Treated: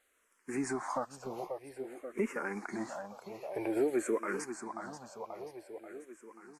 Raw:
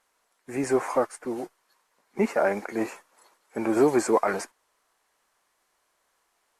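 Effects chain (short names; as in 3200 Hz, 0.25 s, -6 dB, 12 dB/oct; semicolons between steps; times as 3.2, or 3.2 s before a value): on a send: feedback echo 0.535 s, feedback 57%, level -14.5 dB; on the sum: compressor 2:1, threshold -35 dBFS, peak gain reduction 11 dB; endless phaser -0.51 Hz; gain +1 dB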